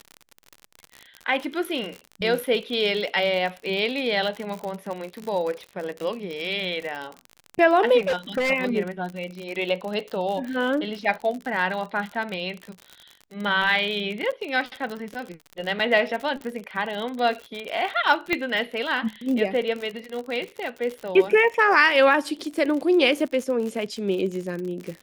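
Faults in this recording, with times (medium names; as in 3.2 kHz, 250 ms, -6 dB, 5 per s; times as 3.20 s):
crackle 54 per s -29 dBFS
7.98–8.51 s: clipped -20 dBFS
15.79–15.80 s: dropout 5.2 ms
18.33 s: pop -10 dBFS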